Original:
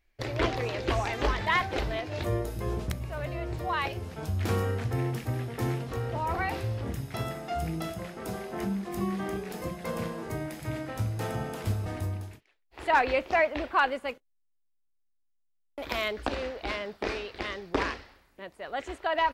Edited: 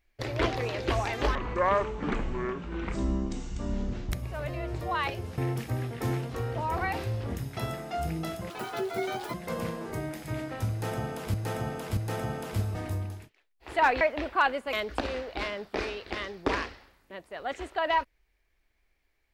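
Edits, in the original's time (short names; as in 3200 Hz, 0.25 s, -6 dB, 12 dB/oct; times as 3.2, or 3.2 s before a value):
1.35–2.9 speed 56%
4.16–4.95 cut
8.07–9.71 speed 195%
11.08–11.71 loop, 3 plays
13.12–13.39 cut
14.11–16.01 cut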